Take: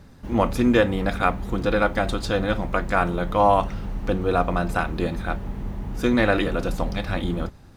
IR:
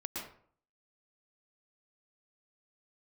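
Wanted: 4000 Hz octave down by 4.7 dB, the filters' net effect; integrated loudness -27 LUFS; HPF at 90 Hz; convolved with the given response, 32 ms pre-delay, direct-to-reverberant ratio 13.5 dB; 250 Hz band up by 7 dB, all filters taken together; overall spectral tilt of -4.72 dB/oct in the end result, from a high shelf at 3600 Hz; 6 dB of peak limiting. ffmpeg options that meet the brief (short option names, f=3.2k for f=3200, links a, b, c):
-filter_complex "[0:a]highpass=90,equalizer=f=250:t=o:g=8.5,highshelf=f=3.6k:g=3.5,equalizer=f=4k:t=o:g=-8,alimiter=limit=-8.5dB:level=0:latency=1,asplit=2[a][b];[1:a]atrim=start_sample=2205,adelay=32[c];[b][c]afir=irnorm=-1:irlink=0,volume=-14.5dB[d];[a][d]amix=inputs=2:normalize=0,volume=-5dB"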